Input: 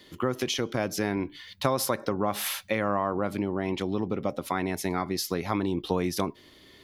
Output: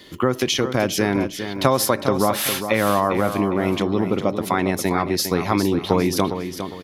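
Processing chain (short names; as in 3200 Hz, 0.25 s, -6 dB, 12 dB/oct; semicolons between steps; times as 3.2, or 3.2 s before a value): feedback echo 0.406 s, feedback 34%, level -9 dB; gain +8 dB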